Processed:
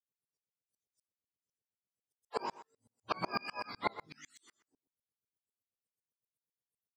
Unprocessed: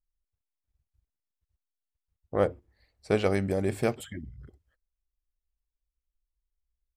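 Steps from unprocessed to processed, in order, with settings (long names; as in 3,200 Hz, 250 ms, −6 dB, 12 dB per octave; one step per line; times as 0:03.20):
frequency axis turned over on the octave scale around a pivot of 690 Hz
Bessel high-pass filter 210 Hz, order 2
parametric band 470 Hz +12.5 dB 0.49 octaves
mains-hum notches 50/100/150/200/250/300/350/400/450 Hz
chorus effect 0.3 Hz, delay 16 ms, depth 6.3 ms
far-end echo of a speakerphone 120 ms, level −13 dB
tremolo with a ramp in dB swelling 8 Hz, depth 35 dB
level +4.5 dB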